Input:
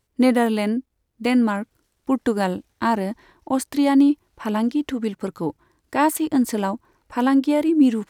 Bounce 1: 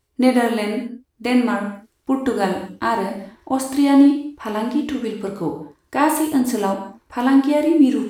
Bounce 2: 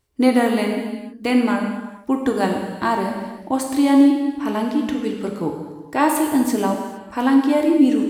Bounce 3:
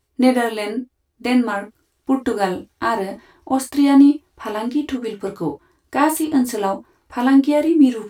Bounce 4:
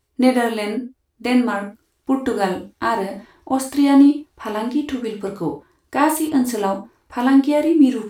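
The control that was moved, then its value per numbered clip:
gated-style reverb, gate: 250 ms, 490 ms, 90 ms, 140 ms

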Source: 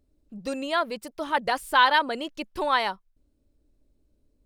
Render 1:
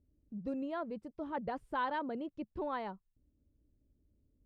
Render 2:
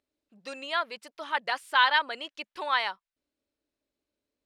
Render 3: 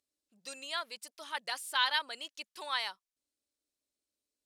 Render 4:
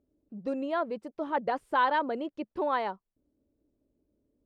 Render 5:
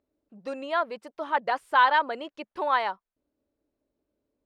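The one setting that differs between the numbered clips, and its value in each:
band-pass filter, frequency: 110 Hz, 2.4 kHz, 7.2 kHz, 350 Hz, 920 Hz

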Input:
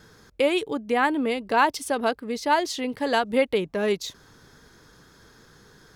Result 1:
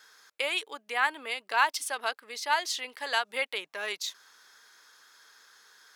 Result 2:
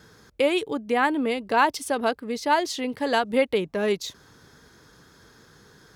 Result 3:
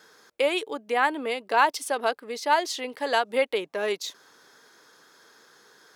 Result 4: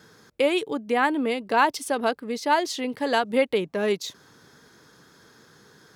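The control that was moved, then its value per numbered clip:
high-pass, cutoff frequency: 1.2 kHz, 47 Hz, 460 Hz, 130 Hz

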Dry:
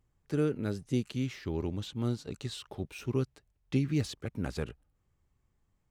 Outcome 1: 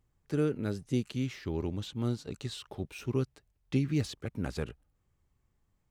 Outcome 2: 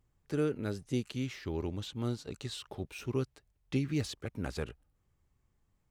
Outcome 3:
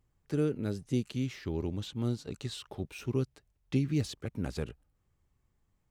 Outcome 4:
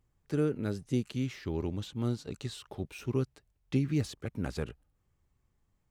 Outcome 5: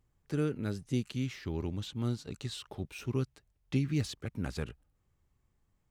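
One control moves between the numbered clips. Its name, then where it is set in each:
dynamic bell, frequency: 9.5 kHz, 170 Hz, 1.4 kHz, 3.6 kHz, 490 Hz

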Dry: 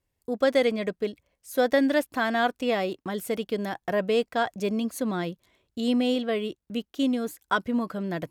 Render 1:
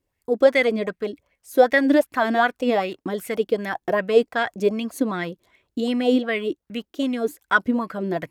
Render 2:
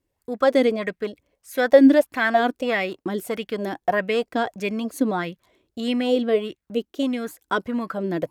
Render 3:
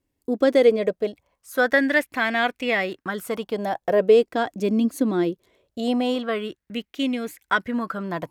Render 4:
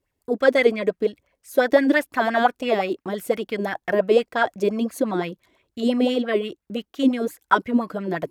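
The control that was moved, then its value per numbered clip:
sweeping bell, rate: 2.6 Hz, 1.6 Hz, 0.21 Hz, 5.8 Hz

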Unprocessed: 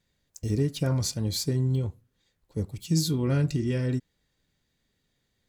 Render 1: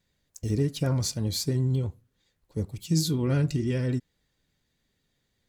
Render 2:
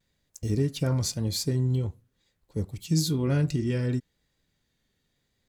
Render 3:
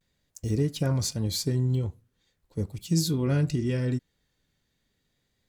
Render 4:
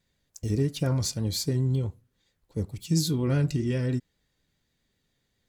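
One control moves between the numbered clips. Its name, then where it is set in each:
vibrato, rate: 12 Hz, 0.98 Hz, 0.4 Hz, 7.5 Hz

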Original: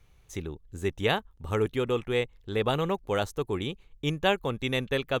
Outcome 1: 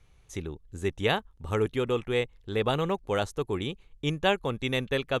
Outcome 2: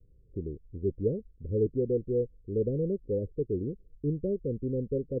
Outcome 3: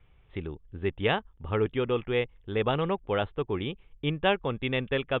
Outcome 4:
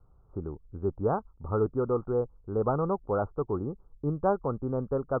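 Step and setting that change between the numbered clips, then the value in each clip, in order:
steep low-pass, frequency: 12 kHz, 530 Hz, 3.5 kHz, 1.4 kHz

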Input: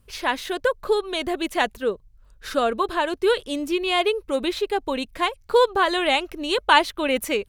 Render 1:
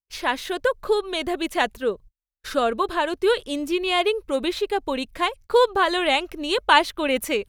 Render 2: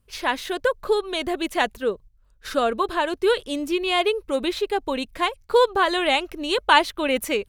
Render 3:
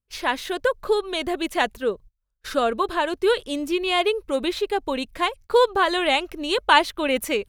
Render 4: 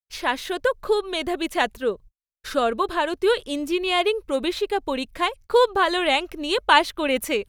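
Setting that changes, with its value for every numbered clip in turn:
gate, range: -45 dB, -7 dB, -28 dB, -58 dB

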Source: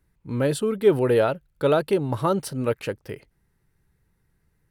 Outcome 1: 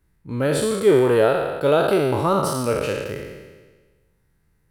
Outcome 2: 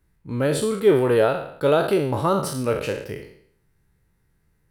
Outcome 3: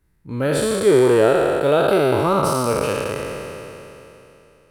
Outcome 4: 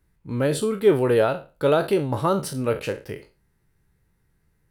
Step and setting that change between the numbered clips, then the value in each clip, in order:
spectral sustain, RT60: 1.38 s, 0.64 s, 3.07 s, 0.31 s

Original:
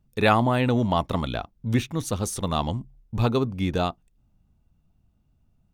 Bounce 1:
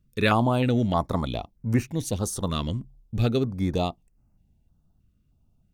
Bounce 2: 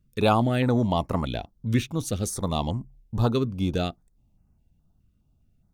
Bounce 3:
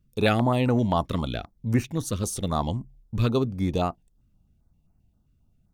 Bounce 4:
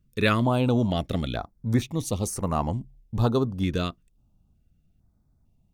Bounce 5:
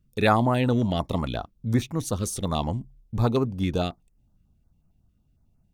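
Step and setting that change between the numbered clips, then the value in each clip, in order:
step-sequenced notch, rate: 3.2 Hz, 4.8 Hz, 7.6 Hz, 2.2 Hz, 11 Hz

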